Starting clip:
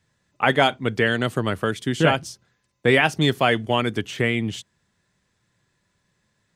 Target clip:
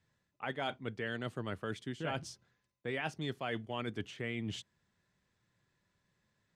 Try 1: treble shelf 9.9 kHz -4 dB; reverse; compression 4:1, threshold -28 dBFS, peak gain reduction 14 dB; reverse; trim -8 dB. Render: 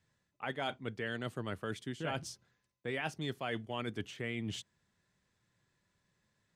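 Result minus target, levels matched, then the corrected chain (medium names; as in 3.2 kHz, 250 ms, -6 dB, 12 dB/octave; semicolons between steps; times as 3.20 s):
8 kHz band +3.0 dB
treble shelf 9.9 kHz -14 dB; reverse; compression 4:1, threshold -28 dBFS, peak gain reduction 14 dB; reverse; trim -8 dB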